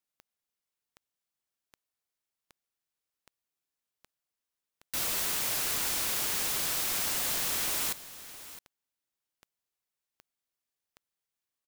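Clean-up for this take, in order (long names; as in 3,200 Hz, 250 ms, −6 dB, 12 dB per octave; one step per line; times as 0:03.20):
click removal
echo removal 663 ms −15.5 dB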